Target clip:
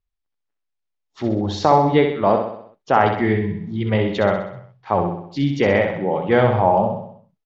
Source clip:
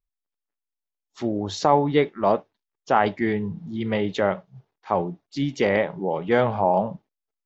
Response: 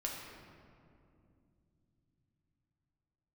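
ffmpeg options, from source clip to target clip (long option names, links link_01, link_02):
-filter_complex "[0:a]lowpass=4800,equalizer=frequency=96:width=2.3:gain=8,asplit=2[link_01][link_02];[link_02]aecho=0:1:64|128|192|256|320|384:0.501|0.261|0.136|0.0705|0.0366|0.0191[link_03];[link_01][link_03]amix=inputs=2:normalize=0,volume=3dB"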